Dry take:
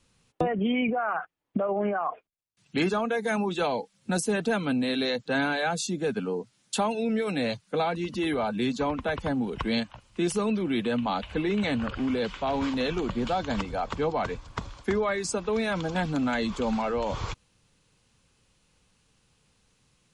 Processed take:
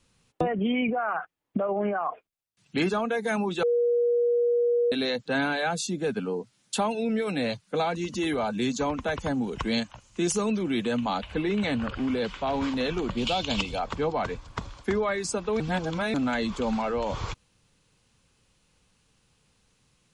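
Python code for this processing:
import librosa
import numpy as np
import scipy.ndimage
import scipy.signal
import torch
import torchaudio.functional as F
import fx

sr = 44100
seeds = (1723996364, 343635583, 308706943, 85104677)

y = fx.peak_eq(x, sr, hz=6600.0, db=11.5, octaves=0.5, at=(7.75, 11.18))
y = fx.high_shelf_res(y, sr, hz=2200.0, db=7.0, q=3.0, at=(13.17, 13.79))
y = fx.edit(y, sr, fx.bleep(start_s=3.63, length_s=1.29, hz=478.0, db=-20.0),
    fx.reverse_span(start_s=15.6, length_s=0.54), tone=tone)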